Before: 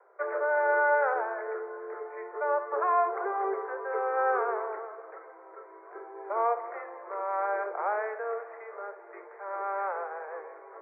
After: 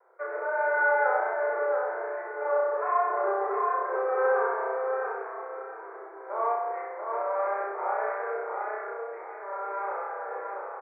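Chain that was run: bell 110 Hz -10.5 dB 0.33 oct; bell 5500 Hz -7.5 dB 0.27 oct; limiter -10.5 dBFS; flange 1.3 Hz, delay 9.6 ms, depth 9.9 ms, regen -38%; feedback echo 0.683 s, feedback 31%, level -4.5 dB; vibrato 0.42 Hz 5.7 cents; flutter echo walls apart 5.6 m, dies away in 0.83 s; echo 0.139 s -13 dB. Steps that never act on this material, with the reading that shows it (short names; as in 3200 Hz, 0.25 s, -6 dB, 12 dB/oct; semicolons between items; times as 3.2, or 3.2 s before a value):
bell 110 Hz: input band starts at 320 Hz; bell 5500 Hz: input band ends at 2200 Hz; limiter -10.5 dBFS: input peak -16.0 dBFS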